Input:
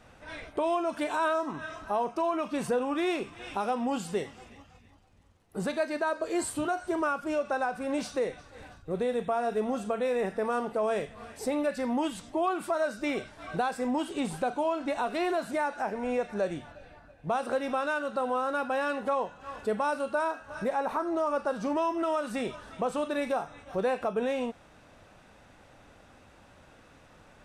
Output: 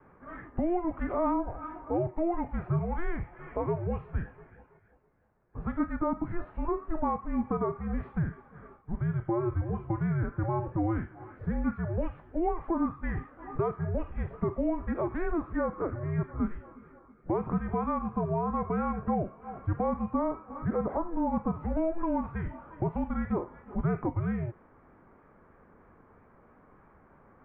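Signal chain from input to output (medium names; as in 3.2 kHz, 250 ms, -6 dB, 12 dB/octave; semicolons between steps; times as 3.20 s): mistuned SSB -340 Hz 250–2100 Hz; vibrato 3.1 Hz 38 cents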